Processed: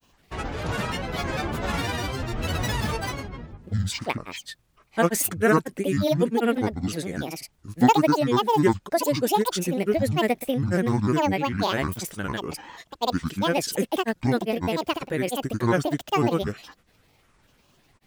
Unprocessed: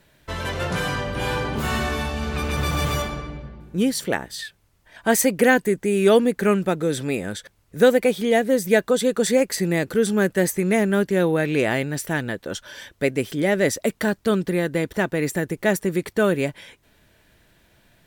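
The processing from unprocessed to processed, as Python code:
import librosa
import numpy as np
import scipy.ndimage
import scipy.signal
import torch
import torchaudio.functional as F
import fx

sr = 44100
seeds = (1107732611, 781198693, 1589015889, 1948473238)

y = fx.granulator(x, sr, seeds[0], grain_ms=100.0, per_s=20.0, spray_ms=100.0, spread_st=12)
y = y * librosa.db_to_amplitude(-2.0)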